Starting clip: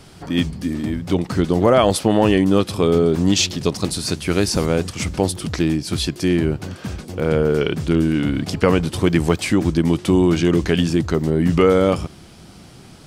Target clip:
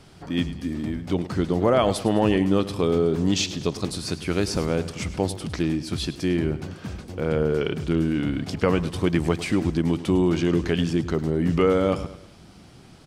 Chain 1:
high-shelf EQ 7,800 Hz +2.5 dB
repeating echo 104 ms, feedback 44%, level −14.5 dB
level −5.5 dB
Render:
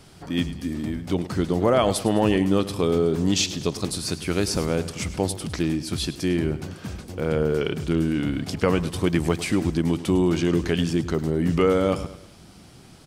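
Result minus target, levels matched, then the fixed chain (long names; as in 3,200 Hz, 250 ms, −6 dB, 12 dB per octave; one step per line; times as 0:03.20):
8,000 Hz band +4.0 dB
high-shelf EQ 7,800 Hz −7 dB
repeating echo 104 ms, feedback 44%, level −14.5 dB
level −5.5 dB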